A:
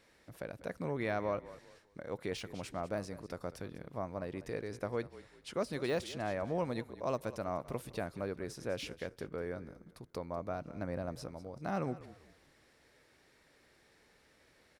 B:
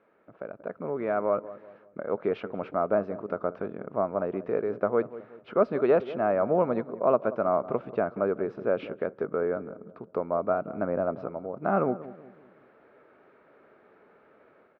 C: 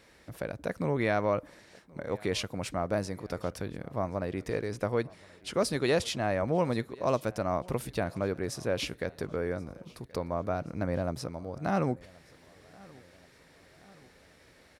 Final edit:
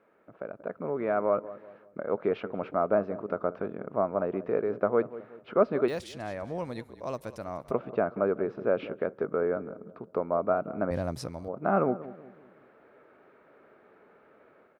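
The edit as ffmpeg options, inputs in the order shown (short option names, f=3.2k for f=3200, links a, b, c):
-filter_complex "[1:a]asplit=3[a][b][c];[a]atrim=end=5.882[d];[0:a]atrim=start=5.878:end=7.712[e];[b]atrim=start=7.708:end=10.912[f];[2:a]atrim=start=10.908:end=11.482[g];[c]atrim=start=11.478[h];[d][e]acrossfade=d=0.004:c1=hsin:c2=hsin[i];[i][f]acrossfade=d=0.004:c1=hsin:c2=hsin[j];[j][g]acrossfade=d=0.004:c1=hsin:c2=hsin[k];[k][h]acrossfade=d=0.004:c1=hsin:c2=hsin"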